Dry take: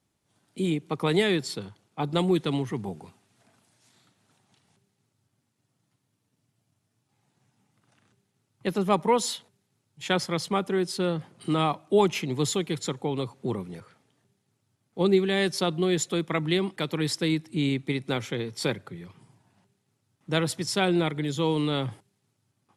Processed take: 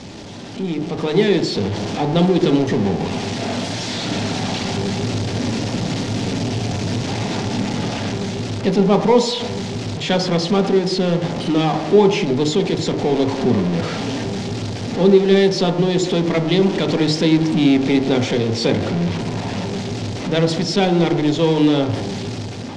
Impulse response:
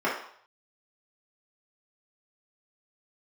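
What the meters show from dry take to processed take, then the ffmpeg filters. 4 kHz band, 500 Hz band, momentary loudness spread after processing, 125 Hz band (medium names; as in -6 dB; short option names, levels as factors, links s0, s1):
+9.5 dB, +10.5 dB, 10 LU, +11.5 dB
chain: -filter_complex "[0:a]aeval=exprs='val(0)+0.5*0.0668*sgn(val(0))':c=same,lowpass=f=5800:w=0.5412,lowpass=f=5800:w=1.3066,equalizer=f=1200:t=o:w=0.87:g=-7.5,dynaudnorm=f=420:g=5:m=4.22,asplit=2[s0][s1];[1:a]atrim=start_sample=2205,asetrate=27783,aresample=44100,lowpass=f=1400:p=1[s2];[s1][s2]afir=irnorm=-1:irlink=0,volume=0.133[s3];[s0][s3]amix=inputs=2:normalize=0,volume=0.531"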